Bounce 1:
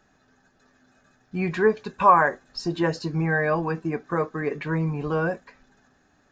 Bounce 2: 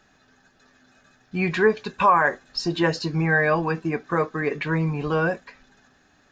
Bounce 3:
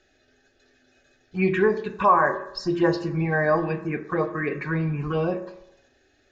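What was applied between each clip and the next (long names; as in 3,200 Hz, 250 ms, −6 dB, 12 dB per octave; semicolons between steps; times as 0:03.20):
parametric band 3,300 Hz +6.5 dB 1.9 octaves; boost into a limiter +9 dB; level −7.5 dB
phaser swept by the level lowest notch 170 Hz, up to 3,000 Hz, full sweep at −16 dBFS; high-frequency loss of the air 71 metres; convolution reverb RT60 0.80 s, pre-delay 3 ms, DRR 6 dB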